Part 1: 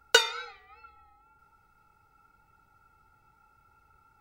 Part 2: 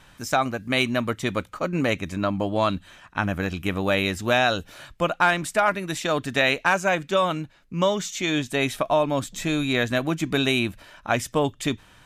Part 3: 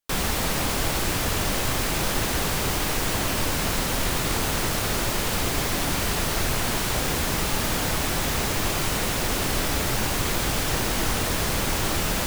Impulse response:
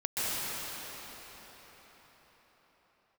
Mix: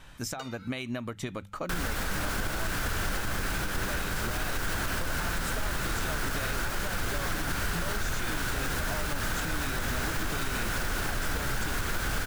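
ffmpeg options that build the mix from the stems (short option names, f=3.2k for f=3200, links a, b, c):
-filter_complex "[0:a]adelay=250,volume=-13.5dB[a];[1:a]acompressor=threshold=-22dB:ratio=6,volume=-1dB[b];[2:a]equalizer=f=1.5k:w=3:g=12,asoftclip=type=tanh:threshold=-17dB,adelay=1600,volume=-1.5dB[c];[a][b]amix=inputs=2:normalize=0,bandreject=f=50:t=h:w=6,bandreject=f=100:t=h:w=6,bandreject=f=150:t=h:w=6,bandreject=f=200:t=h:w=6,acompressor=threshold=-30dB:ratio=6,volume=0dB[d];[c][d]amix=inputs=2:normalize=0,lowshelf=f=77:g=9.5,alimiter=limit=-22dB:level=0:latency=1:release=239"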